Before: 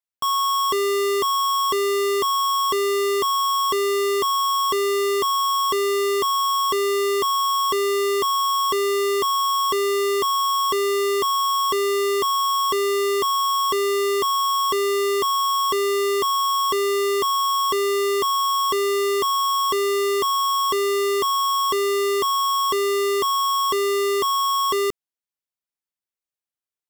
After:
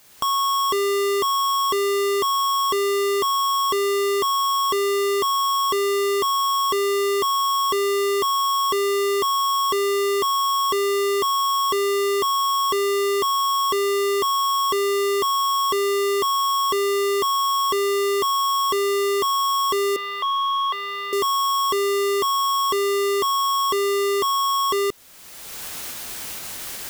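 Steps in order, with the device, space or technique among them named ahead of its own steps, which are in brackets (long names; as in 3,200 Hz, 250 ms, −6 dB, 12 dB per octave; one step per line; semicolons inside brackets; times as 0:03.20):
0:19.96–0:21.13: Chebyshev band-pass filter 630–3,700 Hz, order 3
cheap recorder with automatic gain (white noise bed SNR 32 dB; camcorder AGC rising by 29 dB per second)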